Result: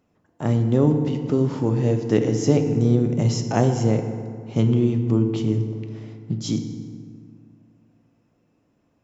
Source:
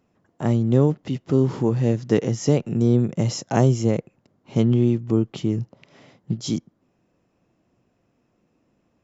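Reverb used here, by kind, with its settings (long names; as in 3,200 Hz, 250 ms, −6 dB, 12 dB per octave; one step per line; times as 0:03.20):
feedback delay network reverb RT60 2.1 s, low-frequency decay 1.2×, high-frequency decay 0.55×, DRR 5.5 dB
level −1 dB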